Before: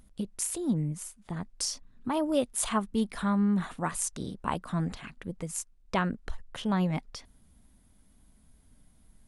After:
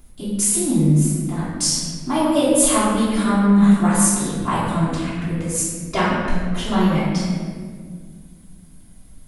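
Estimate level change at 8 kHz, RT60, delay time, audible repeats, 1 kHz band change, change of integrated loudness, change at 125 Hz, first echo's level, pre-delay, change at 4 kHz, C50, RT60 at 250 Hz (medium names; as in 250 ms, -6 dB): +14.5 dB, 1.9 s, no echo, no echo, +11.5 dB, +13.0 dB, +13.5 dB, no echo, 3 ms, +12.5 dB, -1.5 dB, 2.7 s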